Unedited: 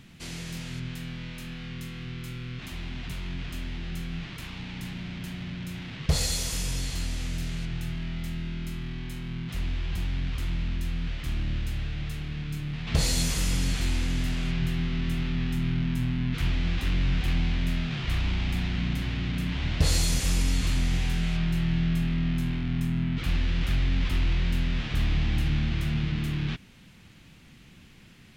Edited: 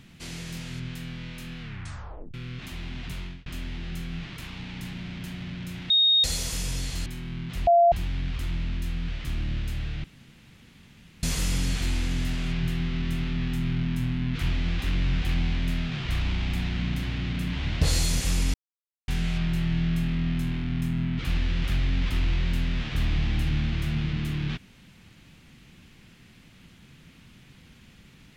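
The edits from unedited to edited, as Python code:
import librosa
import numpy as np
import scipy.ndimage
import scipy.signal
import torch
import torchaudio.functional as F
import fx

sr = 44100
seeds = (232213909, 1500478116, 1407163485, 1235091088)

y = fx.edit(x, sr, fx.tape_stop(start_s=1.6, length_s=0.74),
    fx.fade_out_span(start_s=3.21, length_s=0.25),
    fx.bleep(start_s=5.9, length_s=0.34, hz=3720.0, db=-16.5),
    fx.cut(start_s=7.06, length_s=1.99),
    fx.bleep(start_s=9.66, length_s=0.25, hz=688.0, db=-14.0),
    fx.room_tone_fill(start_s=12.03, length_s=1.19),
    fx.silence(start_s=20.53, length_s=0.54), tone=tone)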